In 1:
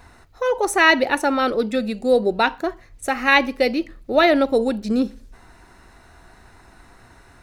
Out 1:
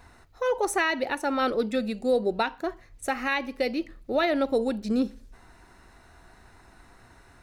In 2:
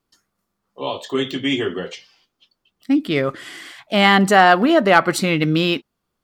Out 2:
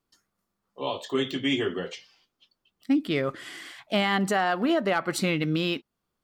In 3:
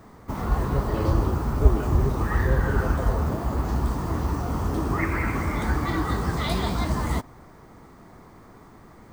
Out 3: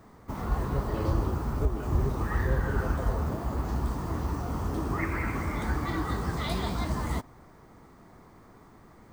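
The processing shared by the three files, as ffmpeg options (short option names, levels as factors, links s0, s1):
-af "alimiter=limit=0.316:level=0:latency=1:release=289,volume=0.562"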